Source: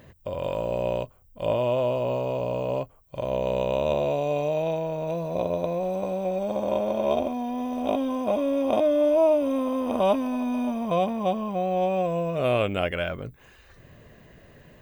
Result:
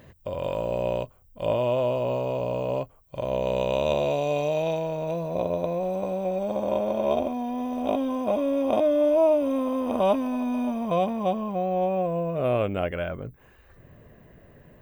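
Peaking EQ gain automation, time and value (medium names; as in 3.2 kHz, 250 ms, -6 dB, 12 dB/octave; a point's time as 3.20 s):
peaking EQ 5.3 kHz 2.3 oct
3.23 s -0.5 dB
3.82 s +5.5 dB
4.73 s +5.5 dB
5.30 s -2.5 dB
11.22 s -2.5 dB
12.04 s -12.5 dB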